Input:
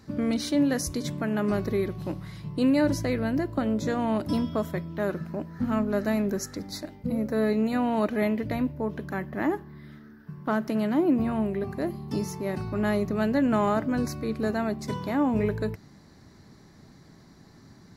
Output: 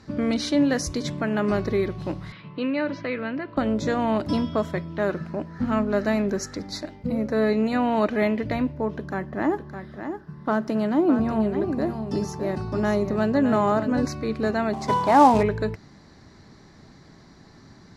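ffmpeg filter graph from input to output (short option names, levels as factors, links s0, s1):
-filter_complex "[0:a]asettb=1/sr,asplit=3[s0][s1][s2];[s0]atrim=end=2.324[s3];[s1]atrim=start=2.32:end=3.57,asetpts=PTS-STARTPTS,afade=t=in:d=0.004:c=qsin,afade=t=out:st=1.246:d=0.004:c=qsin,acompressor=threshold=0.0355:ratio=1.5:attack=3.2:release=140:knee=1:detection=peak,highpass=220,equalizer=f=350:t=q:w=4:g=-6,equalizer=f=750:t=q:w=4:g=-7,equalizer=f=1300:t=q:w=4:g=4,equalizer=f=2500:t=q:w=4:g=5,lowpass=f=3700:w=0.5412,lowpass=f=3700:w=1.3066[s4];[s2]atrim=start=3.566[s5];[s3][s4]acrossfade=d=0.004:c1=hsin:c2=qsin[s6];[s6][s5]acrossfade=d=0.004:c1=qsin:c2=hsin,asettb=1/sr,asplit=3[s7][s8][s9];[s7]atrim=end=8.964[s10];[s8]atrim=start=8.96:end=14.06,asetpts=PTS-STARTPTS,afade=t=in:d=0.004:c=qsin,afade=t=out:st=5.096:d=0.004:c=qsin,equalizer=f=2500:t=o:w=1.5:g=-5.5,bandreject=f=2200:w=26,aecho=1:1:610:0.376,atrim=end_sample=224910[s11];[s9]atrim=start=14.056[s12];[s10][s11]acrossfade=d=0.004:c1=hsin:c2=qsin[s13];[s13][s12]acrossfade=d=0.004:c1=qsin:c2=hsin,asettb=1/sr,asplit=3[s14][s15][s16];[s14]atrim=end=14.734[s17];[s15]atrim=start=14.73:end=15.43,asetpts=PTS-STARTPTS,afade=t=in:d=0.004:c=qsin,afade=t=out:st=0.696:d=0.004:c=qsin,equalizer=f=850:w=1.3:g=14.5,acrusher=bits=5:mode=log:mix=0:aa=0.000001[s18];[s16]atrim=start=15.426[s19];[s17][s18]acrossfade=d=0.004:c1=hsin:c2=qsin[s20];[s20][s19]acrossfade=d=0.004:c1=qsin:c2=hsin,lowpass=6300,equalizer=f=160:w=0.55:g=-3.5,volume=1.78"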